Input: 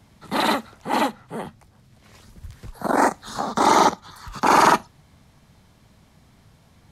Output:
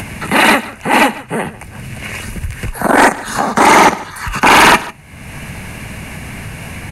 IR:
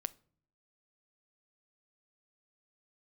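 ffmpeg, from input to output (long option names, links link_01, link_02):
-filter_complex "[0:a]superequalizer=11b=2.24:12b=3.16:13b=0.562:14b=0.631:16b=2,acompressor=mode=upward:threshold=-24dB:ratio=2.5,aeval=exprs='0.794*sin(PI/2*2.24*val(0)/0.794)':channel_layout=same,asplit=2[link_01][link_02];[link_02]aecho=0:1:147:0.119[link_03];[link_01][link_03]amix=inputs=2:normalize=0"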